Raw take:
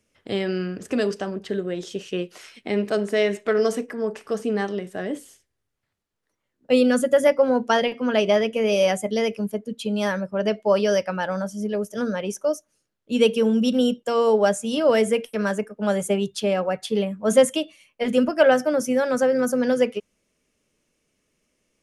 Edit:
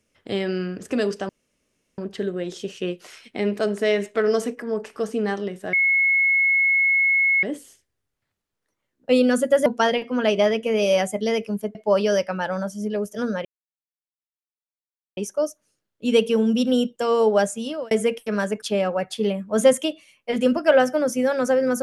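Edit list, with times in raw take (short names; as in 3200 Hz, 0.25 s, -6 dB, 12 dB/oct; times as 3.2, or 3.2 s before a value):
1.29 insert room tone 0.69 s
5.04 add tone 2180 Hz -15.5 dBFS 1.70 s
7.27–7.56 cut
9.65–10.54 cut
12.24 insert silence 1.72 s
14.57–14.98 fade out
15.69–16.34 cut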